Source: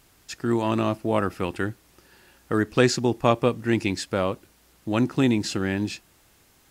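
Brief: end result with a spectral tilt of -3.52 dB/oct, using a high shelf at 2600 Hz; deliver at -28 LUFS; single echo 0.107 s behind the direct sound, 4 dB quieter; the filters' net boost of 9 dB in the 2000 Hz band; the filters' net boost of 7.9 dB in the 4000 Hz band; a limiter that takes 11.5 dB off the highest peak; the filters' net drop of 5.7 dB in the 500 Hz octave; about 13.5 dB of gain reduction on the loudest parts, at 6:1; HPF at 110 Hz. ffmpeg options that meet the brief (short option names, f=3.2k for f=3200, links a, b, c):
-af "highpass=110,equalizer=f=500:t=o:g=-8.5,equalizer=f=2k:t=o:g=9,highshelf=f=2.6k:g=5,equalizer=f=4k:t=o:g=3,acompressor=threshold=-28dB:ratio=6,alimiter=limit=-23dB:level=0:latency=1,aecho=1:1:107:0.631,volume=7dB"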